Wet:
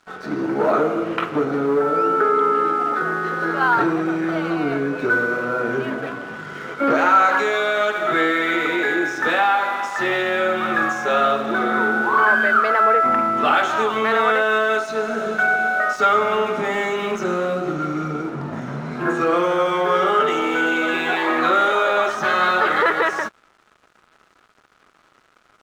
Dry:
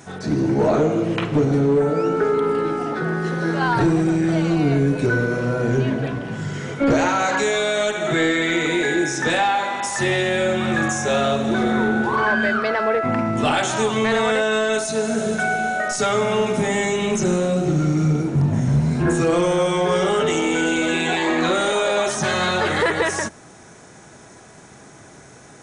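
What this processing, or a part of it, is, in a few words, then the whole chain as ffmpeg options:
pocket radio on a weak battery: -af "highpass=290,lowpass=3.4k,aeval=exprs='sgn(val(0))*max(abs(val(0))-0.00631,0)':c=same,equalizer=f=1.3k:t=o:w=0.45:g=11"

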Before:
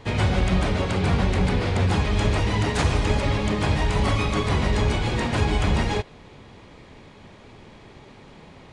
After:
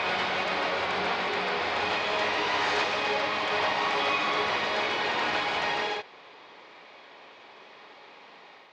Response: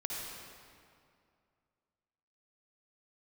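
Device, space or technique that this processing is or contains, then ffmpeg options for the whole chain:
ghost voice: -filter_complex "[0:a]lowpass=f=5.2k:w=0.5412,lowpass=f=5.2k:w=1.3066,areverse[a];[1:a]atrim=start_sample=2205[b];[a][b]afir=irnorm=-1:irlink=0,areverse,highpass=660"

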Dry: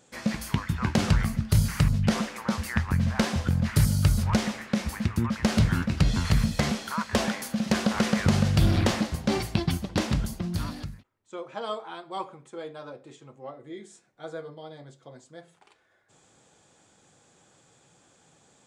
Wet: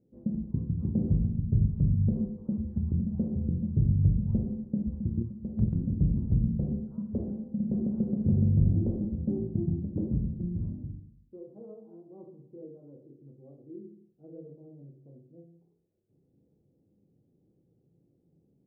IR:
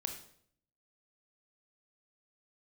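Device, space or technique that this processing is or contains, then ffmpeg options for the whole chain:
next room: -filter_complex "[0:a]lowpass=f=390:w=0.5412,lowpass=f=390:w=1.3066[a];[1:a]atrim=start_sample=2205[b];[a][b]afir=irnorm=-1:irlink=0,asettb=1/sr,asplit=3[c][d][e];[c]atrim=end=5.224[f];[d]atrim=start=5.22:end=5.75,asetpts=PTS-STARTPTS,afade=t=in:d=0.004:c=qsin,afade=t=out:st=0.526:d=0.004:c=qsin,agate=range=-8dB:threshold=-19dB:ratio=16:detection=peak[g];[e]atrim=start=5.746[h];[f][g]acrossfade=d=0.004:c1=hsin:c2=qsin[i];[i][h]acrossfade=d=0.004:c1=qsin:c2=hsin,volume=-3dB"

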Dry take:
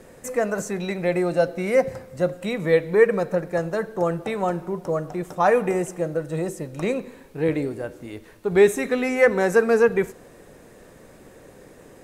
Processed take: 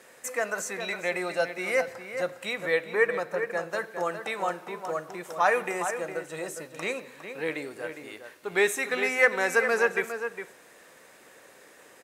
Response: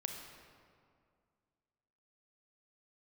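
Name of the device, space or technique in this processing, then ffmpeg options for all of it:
filter by subtraction: -filter_complex "[0:a]asplit=2[a][b];[b]adelay=408.2,volume=-8dB,highshelf=f=4k:g=-9.18[c];[a][c]amix=inputs=2:normalize=0,asplit=2[d][e];[e]lowpass=1.9k,volume=-1[f];[d][f]amix=inputs=2:normalize=0,asplit=3[g][h][i];[g]afade=t=out:st=1.92:d=0.02[j];[h]adynamicequalizer=threshold=0.0112:dfrequency=2100:dqfactor=0.7:tfrequency=2100:tqfactor=0.7:attack=5:release=100:ratio=0.375:range=2.5:mode=cutabove:tftype=highshelf,afade=t=in:st=1.92:d=0.02,afade=t=out:st=3.69:d=0.02[k];[i]afade=t=in:st=3.69:d=0.02[l];[j][k][l]amix=inputs=3:normalize=0"

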